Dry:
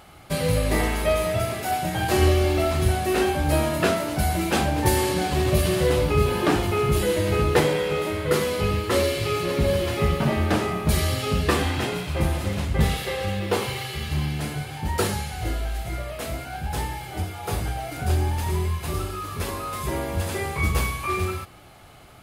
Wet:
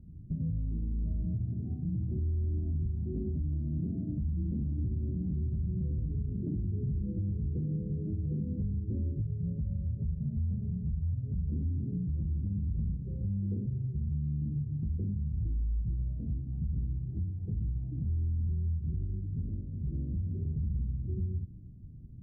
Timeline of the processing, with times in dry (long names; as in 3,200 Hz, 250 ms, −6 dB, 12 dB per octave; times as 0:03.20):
0:03.73–0:06.09: single-tap delay 104 ms −9.5 dB
0:09.21–0:11.52: phaser with its sweep stopped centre 1,600 Hz, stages 8
0:19.24–0:20.45: tuned comb filter 53 Hz, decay 0.24 s, mix 50%
whole clip: inverse Chebyshev low-pass filter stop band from 980 Hz, stop band 70 dB; downward compressor 3 to 1, threshold −33 dBFS; brickwall limiter −31 dBFS; level +5 dB